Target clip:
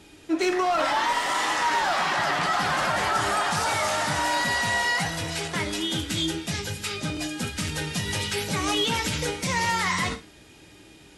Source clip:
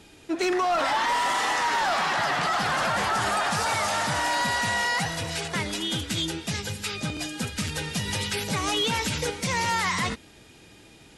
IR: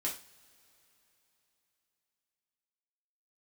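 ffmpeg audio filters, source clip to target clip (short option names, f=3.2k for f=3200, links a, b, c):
-filter_complex "[0:a]asplit=2[a][b];[1:a]atrim=start_sample=2205,atrim=end_sample=6615[c];[b][c]afir=irnorm=-1:irlink=0,volume=-3dB[d];[a][d]amix=inputs=2:normalize=0,volume=-4dB"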